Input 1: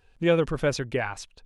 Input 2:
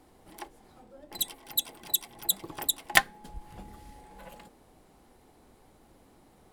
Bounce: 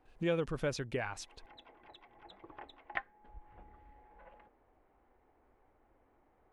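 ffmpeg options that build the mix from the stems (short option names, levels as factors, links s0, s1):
-filter_complex "[0:a]agate=range=0.158:threshold=0.00126:ratio=16:detection=peak,volume=0.794,asplit=2[s0][s1];[1:a]lowpass=f=2200:w=0.5412,lowpass=f=2200:w=1.3066,equalizer=f=170:t=o:w=1.2:g=-12.5,volume=0.398[s2];[s1]apad=whole_len=287720[s3];[s2][s3]sidechaincompress=threshold=0.0224:ratio=8:attack=6.6:release=450[s4];[s0][s4]amix=inputs=2:normalize=0,acompressor=threshold=0.00562:ratio=1.5"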